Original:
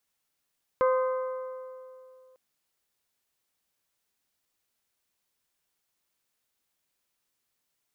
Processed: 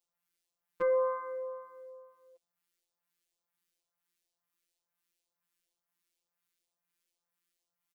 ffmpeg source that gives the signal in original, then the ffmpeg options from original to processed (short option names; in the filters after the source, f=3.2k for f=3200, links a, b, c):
-f lavfi -i "aevalsrc='0.1*pow(10,-3*t/2.6)*sin(2*PI*516*t)+0.0501*pow(10,-3*t/2.112)*sin(2*PI*1032*t)+0.0251*pow(10,-3*t/1.999)*sin(2*PI*1238.4*t)+0.0126*pow(10,-3*t/1.87)*sin(2*PI*1548*t)+0.00631*pow(10,-3*t/1.715)*sin(2*PI*2064*t)':d=1.55:s=44100"
-filter_complex "[0:a]afftfilt=real='hypot(re,im)*cos(PI*b)':imag='0':win_size=1024:overlap=0.75,asplit=2[a][b];[b]adelay=5.7,afreqshift=2.1[c];[a][c]amix=inputs=2:normalize=1"